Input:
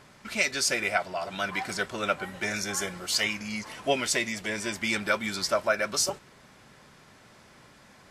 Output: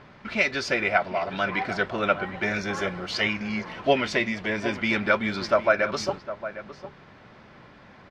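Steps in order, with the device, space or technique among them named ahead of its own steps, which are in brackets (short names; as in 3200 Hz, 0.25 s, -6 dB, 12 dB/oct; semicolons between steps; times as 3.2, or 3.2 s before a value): shout across a valley (air absorption 260 m; outdoor echo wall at 130 m, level -12 dB); gain +6 dB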